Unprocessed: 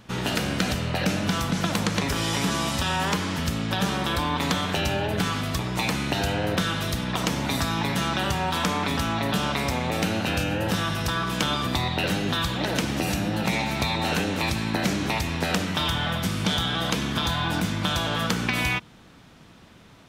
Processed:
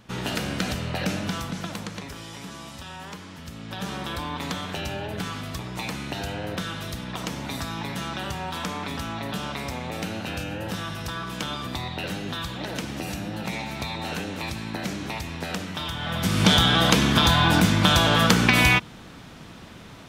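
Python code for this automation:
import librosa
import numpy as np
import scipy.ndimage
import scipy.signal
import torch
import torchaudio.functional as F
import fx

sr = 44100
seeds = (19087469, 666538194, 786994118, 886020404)

y = fx.gain(x, sr, db=fx.line((1.14, -2.5), (2.28, -14.0), (3.42, -14.0), (3.93, -6.0), (15.97, -6.0), (16.43, 7.0)))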